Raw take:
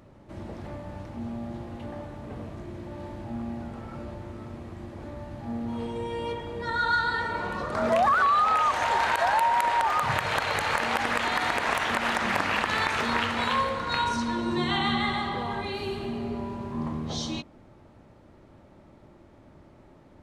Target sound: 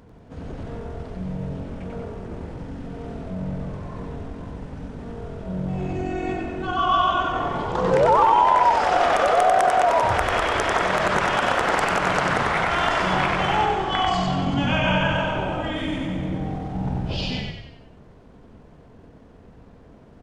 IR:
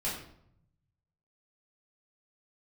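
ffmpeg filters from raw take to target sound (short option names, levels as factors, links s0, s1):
-filter_complex "[0:a]asetrate=35002,aresample=44100,atempo=1.25992,asplit=7[s0][s1][s2][s3][s4][s5][s6];[s1]adelay=94,afreqshift=-44,volume=0.708[s7];[s2]adelay=188,afreqshift=-88,volume=0.339[s8];[s3]adelay=282,afreqshift=-132,volume=0.162[s9];[s4]adelay=376,afreqshift=-176,volume=0.0785[s10];[s5]adelay=470,afreqshift=-220,volume=0.0376[s11];[s6]adelay=564,afreqshift=-264,volume=0.018[s12];[s0][s7][s8][s9][s10][s11][s12]amix=inputs=7:normalize=0,volume=1.5"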